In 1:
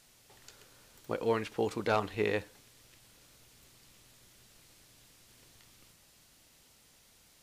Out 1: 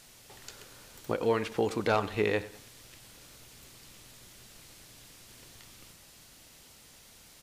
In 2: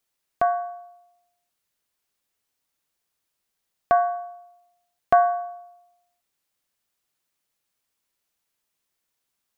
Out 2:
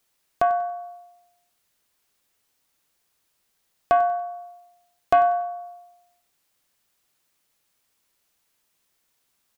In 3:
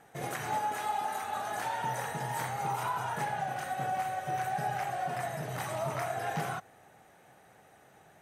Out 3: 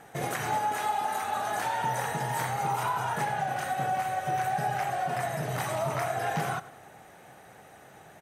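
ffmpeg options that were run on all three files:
ffmpeg -i in.wav -filter_complex "[0:a]asplit=2[link_01][link_02];[link_02]acompressor=threshold=-38dB:ratio=6,volume=2.5dB[link_03];[link_01][link_03]amix=inputs=2:normalize=0,asoftclip=type=tanh:threshold=-7.5dB,aecho=1:1:95|190|285:0.133|0.0493|0.0183" out.wav

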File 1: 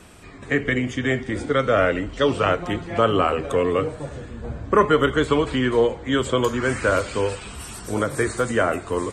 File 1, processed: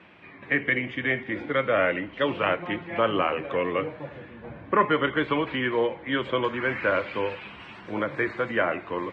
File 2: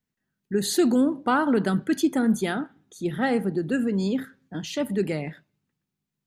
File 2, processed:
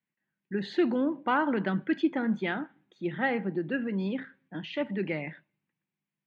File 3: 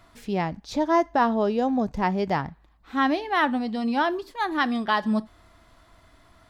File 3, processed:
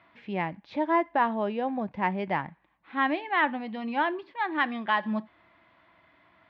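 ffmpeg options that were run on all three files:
ffmpeg -i in.wav -af "highpass=210,equalizer=frequency=250:width_type=q:width=4:gain=-7,equalizer=frequency=430:width_type=q:width=4:gain=-9,equalizer=frequency=700:width_type=q:width=4:gain=-5,equalizer=frequency=1300:width_type=q:width=4:gain=-6,equalizer=frequency=2200:width_type=q:width=4:gain=3,lowpass=frequency=2900:width=0.5412,lowpass=frequency=2900:width=1.3066" out.wav

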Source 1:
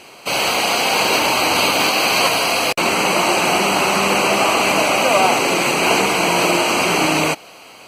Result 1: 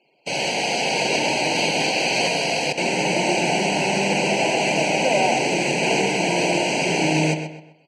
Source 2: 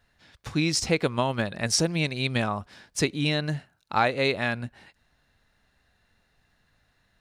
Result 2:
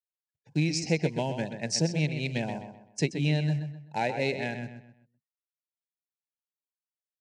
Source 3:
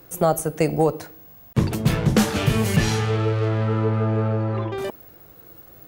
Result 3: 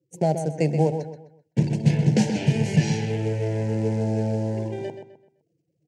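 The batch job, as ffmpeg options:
ffmpeg -i in.wav -filter_complex "[0:a]afftfilt=real='re*gte(hypot(re,im),0.0112)':imag='im*gte(hypot(re,im),0.0112)':win_size=1024:overlap=0.75,agate=range=-14dB:threshold=-34dB:ratio=16:detection=peak,asplit=2[link_01][link_02];[link_02]asoftclip=type=hard:threshold=-14.5dB,volume=-8dB[link_03];[link_01][link_03]amix=inputs=2:normalize=0,aeval=exprs='1*(cos(1*acos(clip(val(0)/1,-1,1)))-cos(1*PI/2))+0.0562*(cos(7*acos(clip(val(0)/1,-1,1)))-cos(7*PI/2))':channel_layout=same,acrusher=bits=5:mode=log:mix=0:aa=0.000001,asoftclip=type=tanh:threshold=-2.5dB,asuperstop=centerf=1200:order=4:qfactor=0.96,highpass=frequency=120:width=0.5412,highpass=frequency=120:width=1.3066,equalizer=frequency=150:width_type=q:width=4:gain=8,equalizer=frequency=940:width_type=q:width=4:gain=9,equalizer=frequency=1500:width_type=q:width=4:gain=5,equalizer=frequency=3600:width_type=q:width=4:gain=-8,lowpass=frequency=7700:width=0.5412,lowpass=frequency=7700:width=1.3066,asplit=2[link_04][link_05];[link_05]adelay=128,lowpass=frequency=4000:poles=1,volume=-8dB,asplit=2[link_06][link_07];[link_07]adelay=128,lowpass=frequency=4000:poles=1,volume=0.35,asplit=2[link_08][link_09];[link_09]adelay=128,lowpass=frequency=4000:poles=1,volume=0.35,asplit=2[link_10][link_11];[link_11]adelay=128,lowpass=frequency=4000:poles=1,volume=0.35[link_12];[link_04][link_06][link_08][link_10][link_12]amix=inputs=5:normalize=0,volume=-4dB" out.wav

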